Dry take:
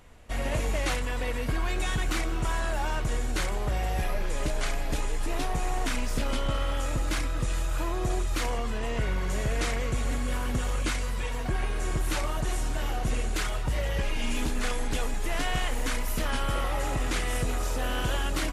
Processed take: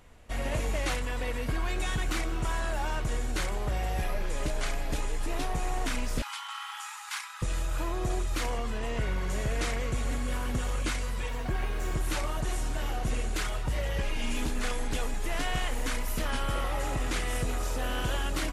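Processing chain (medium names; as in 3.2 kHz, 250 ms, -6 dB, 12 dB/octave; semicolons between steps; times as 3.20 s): 6.22–7.42 s: steep high-pass 810 Hz 96 dB/octave; 11.28–11.95 s: decimation joined by straight lines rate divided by 2×; trim -2 dB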